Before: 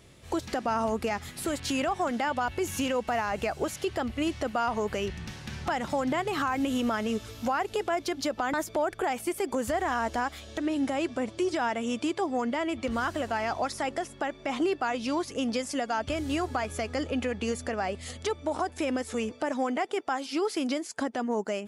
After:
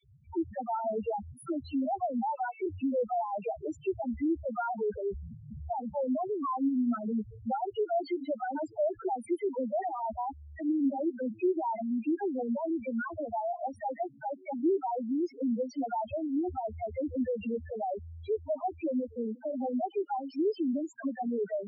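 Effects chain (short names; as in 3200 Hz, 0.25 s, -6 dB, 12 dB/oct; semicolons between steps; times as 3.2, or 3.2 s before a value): 2.18–2.63 elliptic band-pass 390–2700 Hz, stop band 40 dB; dispersion lows, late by 42 ms, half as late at 800 Hz; loudest bins only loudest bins 2; gain +1.5 dB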